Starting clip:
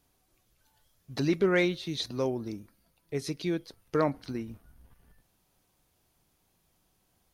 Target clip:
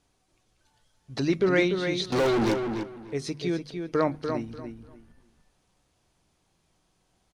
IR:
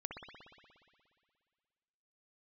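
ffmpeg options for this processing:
-filter_complex "[0:a]lowpass=frequency=9200:width=0.5412,lowpass=frequency=9200:width=1.3066,bandreject=frequency=50:width_type=h:width=6,bandreject=frequency=100:width_type=h:width=6,bandreject=frequency=150:width_type=h:width=6,bandreject=frequency=200:width_type=h:width=6,bandreject=frequency=250:width_type=h:width=6,asettb=1/sr,asplit=3[link_01][link_02][link_03];[link_01]atrim=end=2.124[link_04];[link_02]atrim=start=2.12:end=2.54,asetpts=PTS-STARTPTS,afade=type=in:duration=0.004:curve=qsin,afade=type=out:start_time=0.416:duration=0.004:curve=qsin,asplit=2[link_05][link_06];[link_06]highpass=frequency=720:poles=1,volume=40dB,asoftclip=type=tanh:threshold=-19dB[link_07];[link_05][link_07]amix=inputs=2:normalize=0,lowpass=frequency=2500:poles=1,volume=-6dB[link_08];[link_03]atrim=start=2.536[link_09];[link_04][link_08]acrossfade=duration=0.004:curve1=hsin:curve2=qsin[link_10];[link_10][link_09]acrossfade=duration=0.004:curve1=qsin:curve2=hsin,asplit=2[link_11][link_12];[link_12]adelay=294,lowpass=frequency=3300:poles=1,volume=-6dB,asplit=2[link_13][link_14];[link_14]adelay=294,lowpass=frequency=3300:poles=1,volume=0.22,asplit=2[link_15][link_16];[link_16]adelay=294,lowpass=frequency=3300:poles=1,volume=0.22[link_17];[link_11][link_13][link_15][link_17]amix=inputs=4:normalize=0,volume=2dB"

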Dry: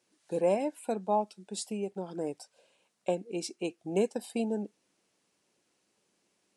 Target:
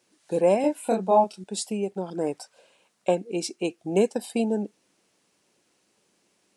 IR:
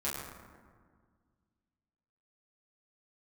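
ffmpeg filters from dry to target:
-filter_complex "[0:a]asettb=1/sr,asplit=3[link_01][link_02][link_03];[link_01]atrim=end=0.614[link_04];[link_02]atrim=start=0.61:end=1.44,asetpts=PTS-STARTPTS,afade=type=in:duration=0.004:curve=qsin,afade=type=out:start_time=0.826:duration=0.004:curve=qsin,asplit=2[link_05][link_06];[link_06]adelay=27,volume=-2dB[link_07];[link_05][link_07]amix=inputs=2:normalize=0,atrim=end_sample=36603[link_08];[link_03]atrim=start=1.436[link_09];[link_04][link_08]acrossfade=duration=0.004:curve1=hsin:curve2=qsin[link_10];[link_10][link_09]acrossfade=duration=0.004:curve1=qsin:curve2=hsin,asettb=1/sr,asplit=3[link_11][link_12][link_13];[link_11]atrim=end=2.104[link_14];[link_12]atrim=start=2.1:end=3.19,asetpts=PTS-STARTPTS,afade=type=in:duration=0.004:curve=qsin,afade=type=out:start_time=1.086:duration=0.004:curve=qsin,adynamicequalizer=threshold=0.00398:dfrequency=1300:dqfactor=1:tfrequency=1300:tqfactor=1:attack=5:release=100:ratio=0.375:range=3.5:mode=boostabove:tftype=bell[link_15];[link_13]atrim=start=3.186[link_16];[link_14][link_15]acrossfade=duration=0.004:curve1=hsin:curve2=qsin[link_17];[link_17][link_16]acrossfade=duration=0.004:curve1=qsin:curve2=hsin,volume=6.5dB"

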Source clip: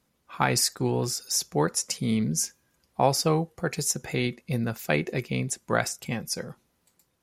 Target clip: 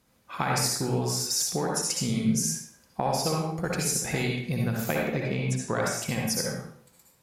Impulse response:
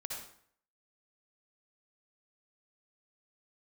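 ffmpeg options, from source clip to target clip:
-filter_complex "[0:a]asettb=1/sr,asplit=3[link_01][link_02][link_03];[link_01]atrim=end=4.844[link_04];[link_02]atrim=start=4.84:end=5.76,asetpts=PTS-STARTPTS,afade=type=in:duration=0.004:curve=qsin,afade=type=out:start_time=0.916:duration=0.004:curve=qsin,aemphasis=mode=reproduction:type=50fm[link_05];[link_03]atrim=start=5.756[link_06];[link_04][link_05]acrossfade=duration=0.004:curve1=hsin:curve2=qsin[link_07];[link_07][link_06]acrossfade=duration=0.004:curve1=qsin:curve2=hsin,acompressor=threshold=-30dB:ratio=6[link_08];[1:a]atrim=start_sample=2205[link_09];[link_08][link_09]afir=irnorm=-1:irlink=0,volume=8dB"

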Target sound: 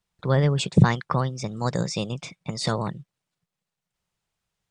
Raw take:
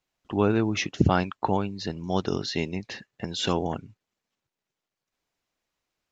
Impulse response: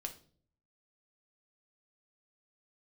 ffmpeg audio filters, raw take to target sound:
-af "asetrate=57330,aresample=44100,lowshelf=frequency=210:width_type=q:width=3:gain=6"

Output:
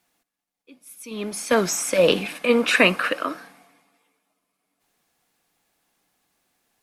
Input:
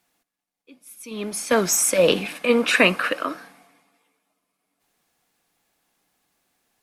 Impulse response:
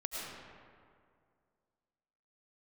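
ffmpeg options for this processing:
-filter_complex "[0:a]acrossover=split=5600[link_01][link_02];[link_02]acompressor=threshold=-28dB:ratio=4:attack=1:release=60[link_03];[link_01][link_03]amix=inputs=2:normalize=0"

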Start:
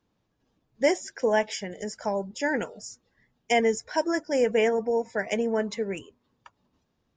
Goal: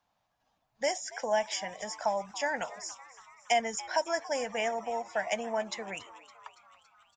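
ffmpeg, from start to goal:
ffmpeg -i in.wav -filter_complex "[0:a]acrossover=split=380|3000[link_01][link_02][link_03];[link_02]acompressor=threshold=-30dB:ratio=6[link_04];[link_01][link_04][link_03]amix=inputs=3:normalize=0,lowshelf=frequency=530:width_type=q:width=3:gain=-10,asplit=7[link_05][link_06][link_07][link_08][link_09][link_10][link_11];[link_06]adelay=281,afreqshift=120,volume=-18.5dB[link_12];[link_07]adelay=562,afreqshift=240,volume=-22.4dB[link_13];[link_08]adelay=843,afreqshift=360,volume=-26.3dB[link_14];[link_09]adelay=1124,afreqshift=480,volume=-30.1dB[link_15];[link_10]adelay=1405,afreqshift=600,volume=-34dB[link_16];[link_11]adelay=1686,afreqshift=720,volume=-37.9dB[link_17];[link_05][link_12][link_13][link_14][link_15][link_16][link_17]amix=inputs=7:normalize=0" out.wav

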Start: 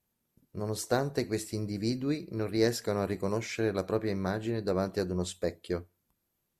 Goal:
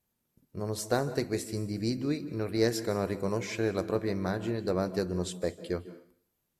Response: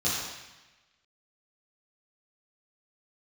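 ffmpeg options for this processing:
-filter_complex "[0:a]asplit=2[link_01][link_02];[1:a]atrim=start_sample=2205,asetrate=88200,aresample=44100,adelay=146[link_03];[link_02][link_03]afir=irnorm=-1:irlink=0,volume=-20dB[link_04];[link_01][link_04]amix=inputs=2:normalize=0"

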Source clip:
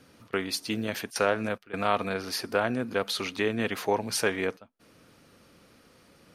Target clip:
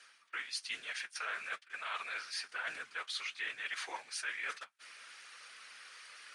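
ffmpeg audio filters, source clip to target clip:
ffmpeg -i in.wav -filter_complex "[0:a]asplit=2[link_01][link_02];[link_02]acrusher=bits=6:mix=0:aa=0.000001,volume=-5dB[link_03];[link_01][link_03]amix=inputs=2:normalize=0,highpass=frequency=1700:width_type=q:width=1.5,afftfilt=real='hypot(re,im)*cos(2*PI*random(0))':imag='hypot(re,im)*sin(2*PI*random(1))':win_size=512:overlap=0.75,areverse,acompressor=threshold=-56dB:ratio=4,areverse,flanger=delay=6.3:depth=7.2:regen=-42:speed=1.1:shape=triangular,aresample=22050,aresample=44100,volume=17.5dB" out.wav

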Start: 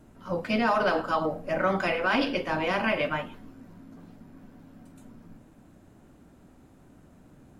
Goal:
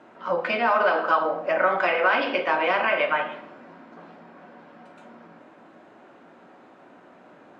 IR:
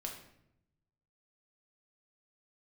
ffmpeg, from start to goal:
-filter_complex "[0:a]acompressor=threshold=-30dB:ratio=4,highpass=530,lowpass=2600,asplit=2[link_01][link_02];[1:a]atrim=start_sample=2205[link_03];[link_02][link_03]afir=irnorm=-1:irlink=0,volume=3dB[link_04];[link_01][link_04]amix=inputs=2:normalize=0,volume=7dB"

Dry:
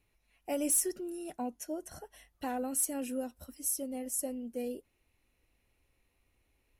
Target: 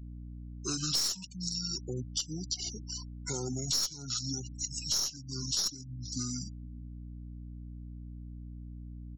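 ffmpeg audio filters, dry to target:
ffmpeg -i in.wav -filter_complex "[0:a]aemphasis=mode=production:type=75fm,asplit=2[link_01][link_02];[link_02]adelay=344,volume=-24dB,highshelf=frequency=4000:gain=-7.74[link_03];[link_01][link_03]amix=inputs=2:normalize=0,asetrate=32667,aresample=44100,acrossover=split=210|440|5700[link_04][link_05][link_06][link_07];[link_06]alimiter=level_in=4dB:limit=-24dB:level=0:latency=1:release=53,volume=-4dB[link_08];[link_07]acontrast=55[link_09];[link_04][link_05][link_08][link_09]amix=inputs=4:normalize=0,asetrate=30296,aresample=44100,atempo=1.45565,aeval=exprs='val(0)+0.00631*(sin(2*PI*60*n/s)+sin(2*PI*2*60*n/s)/2+sin(2*PI*3*60*n/s)/3+sin(2*PI*4*60*n/s)/4+sin(2*PI*5*60*n/s)/5)':channel_layout=same,aeval=exprs='(tanh(2.82*val(0)+0.4)-tanh(0.4))/2.82':channel_layout=same,afftfilt=real='re*gte(hypot(re,im),0.00794)':imag='im*gte(hypot(re,im),0.00794)':win_size=1024:overlap=0.75,adynamicequalizer=threshold=0.00126:dfrequency=1300:dqfactor=7.7:tfrequency=1300:tqfactor=7.7:attack=5:release=100:ratio=0.375:range=3:mode=boostabove:tftype=bell,acompressor=threshold=-34dB:ratio=5,volume=3dB" out.wav

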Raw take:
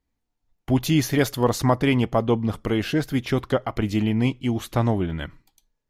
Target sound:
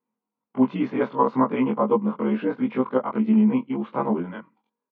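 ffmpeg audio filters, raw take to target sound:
ffmpeg -i in.wav -af "afftfilt=real='re':imag='-im':win_size=2048:overlap=0.75,atempo=1.2,highpass=frequency=210:width=0.5412,highpass=frequency=210:width=1.3066,equalizer=frequency=220:width_type=q:width=4:gain=8,equalizer=frequency=320:width_type=q:width=4:gain=-5,equalizer=frequency=490:width_type=q:width=4:gain=4,equalizer=frequency=690:width_type=q:width=4:gain=-6,equalizer=frequency=1000:width_type=q:width=4:gain=9,equalizer=frequency=1800:width_type=q:width=4:gain=-10,lowpass=frequency=2100:width=0.5412,lowpass=frequency=2100:width=1.3066,volume=4dB" out.wav

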